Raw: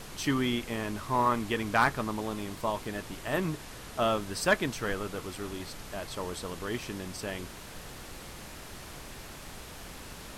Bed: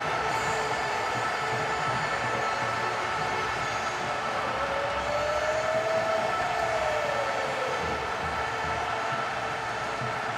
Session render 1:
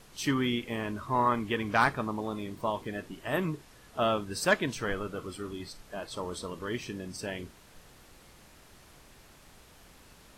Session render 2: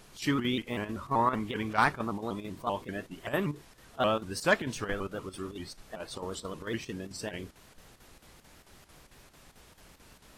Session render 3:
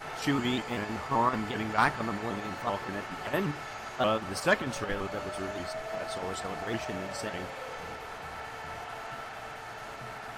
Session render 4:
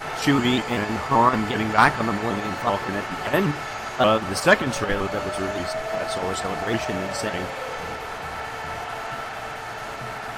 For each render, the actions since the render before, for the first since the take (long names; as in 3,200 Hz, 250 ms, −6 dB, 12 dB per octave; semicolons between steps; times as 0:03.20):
noise reduction from a noise print 11 dB
square-wave tremolo 4.5 Hz, depth 60%, duty 80%; pitch modulation by a square or saw wave saw up 5.2 Hz, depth 160 cents
mix in bed −11 dB
level +9 dB